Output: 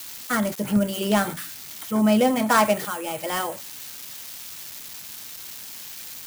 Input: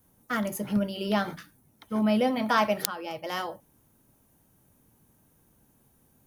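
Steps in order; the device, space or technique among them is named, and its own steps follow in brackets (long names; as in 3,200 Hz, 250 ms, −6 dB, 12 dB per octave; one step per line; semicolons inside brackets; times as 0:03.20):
budget class-D amplifier (gap after every zero crossing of 0.097 ms; spike at every zero crossing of −26.5 dBFS)
level +5.5 dB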